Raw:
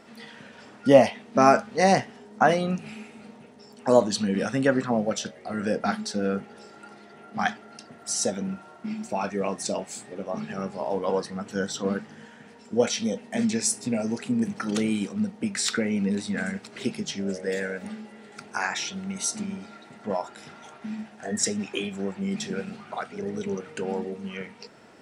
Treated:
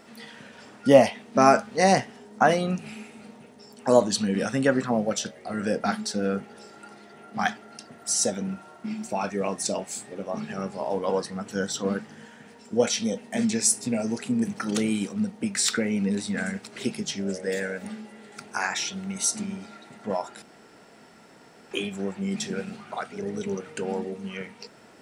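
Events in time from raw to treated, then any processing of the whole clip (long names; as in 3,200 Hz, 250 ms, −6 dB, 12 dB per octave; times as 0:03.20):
0:20.42–0:21.71: fill with room tone
whole clip: high-shelf EQ 8,800 Hz +9 dB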